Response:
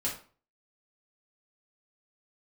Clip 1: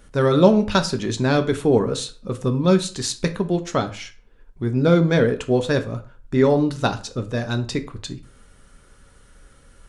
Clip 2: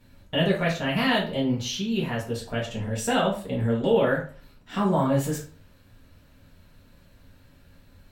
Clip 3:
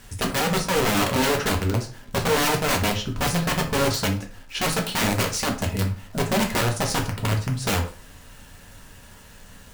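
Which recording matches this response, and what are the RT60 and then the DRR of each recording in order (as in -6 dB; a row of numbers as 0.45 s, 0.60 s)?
2; 0.40 s, 0.40 s, 0.40 s; 7.5 dB, -6.0 dB, 1.0 dB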